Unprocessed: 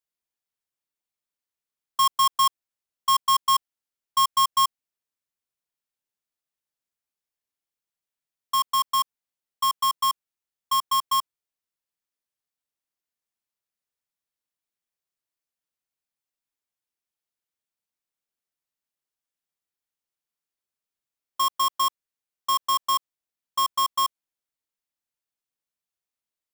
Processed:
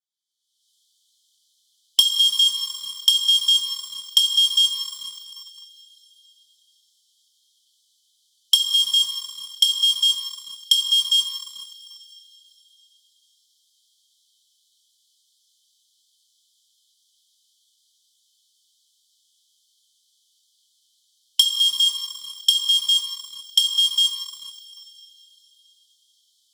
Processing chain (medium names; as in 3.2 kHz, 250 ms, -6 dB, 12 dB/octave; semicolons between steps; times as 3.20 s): recorder AGC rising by 43 dB/s; distance through air 65 m; waveshaping leveller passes 1; brick-wall FIR high-pass 3 kHz; reverberation, pre-delay 3 ms, DRR -5 dB; waveshaping leveller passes 1; compression 3:1, threshold -17 dBFS, peak gain reduction 9.5 dB; trim +2 dB